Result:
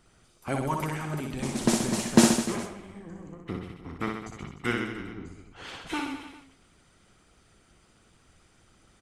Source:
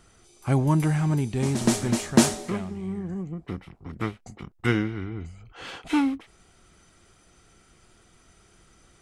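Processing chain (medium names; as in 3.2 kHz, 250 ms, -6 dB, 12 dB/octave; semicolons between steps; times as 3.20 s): harmonic-percussive split harmonic -15 dB; reverse bouncing-ball echo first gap 60 ms, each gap 1.15×, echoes 5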